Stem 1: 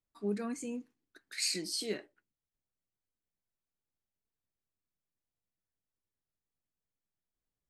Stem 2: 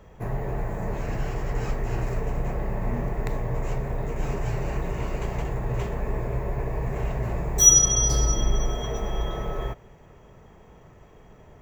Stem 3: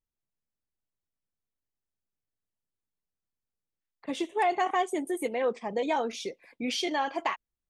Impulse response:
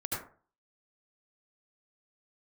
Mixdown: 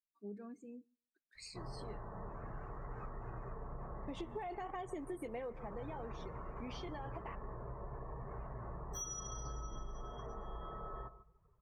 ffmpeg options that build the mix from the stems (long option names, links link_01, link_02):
-filter_complex "[0:a]volume=-12dB,asplit=2[link_01][link_02];[link_02]volume=-23dB[link_03];[1:a]equalizer=frequency=1200:width=1.8:gain=13,adelay=1350,volume=-17.5dB,asplit=2[link_04][link_05];[link_05]volume=-14.5dB[link_06];[2:a]alimiter=limit=-23dB:level=0:latency=1:release=27,acrusher=bits=6:mode=log:mix=0:aa=0.000001,afade=type=in:start_time=4.08:duration=0.3:silence=0.421697,afade=type=out:start_time=5.35:duration=0.43:silence=0.251189,asplit=2[link_07][link_08];[link_08]volume=-19.5dB[link_09];[link_03][link_06][link_09]amix=inputs=3:normalize=0,aecho=0:1:147|294|441|588:1|0.29|0.0841|0.0244[link_10];[link_01][link_04][link_07][link_10]amix=inputs=4:normalize=0,highshelf=frequency=2100:gain=-7.5,afftdn=noise_reduction=17:noise_floor=-57,acompressor=threshold=-40dB:ratio=10"